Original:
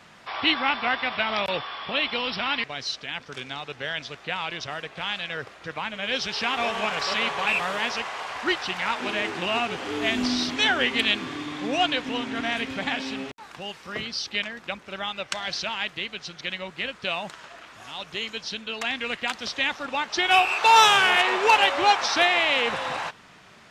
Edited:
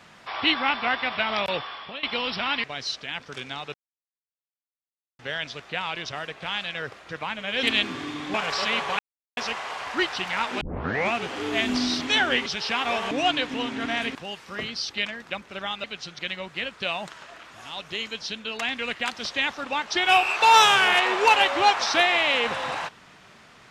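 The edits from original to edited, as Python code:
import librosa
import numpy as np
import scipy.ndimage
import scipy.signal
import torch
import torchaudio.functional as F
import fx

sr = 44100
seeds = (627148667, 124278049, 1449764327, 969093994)

y = fx.edit(x, sr, fx.fade_out_to(start_s=1.49, length_s=0.54, curve='qsin', floor_db=-18.0),
    fx.insert_silence(at_s=3.74, length_s=1.45),
    fx.swap(start_s=6.18, length_s=0.65, other_s=10.95, other_length_s=0.71),
    fx.silence(start_s=7.48, length_s=0.38),
    fx.tape_start(start_s=9.1, length_s=0.53),
    fx.cut(start_s=12.7, length_s=0.82),
    fx.cut(start_s=15.21, length_s=0.85), tone=tone)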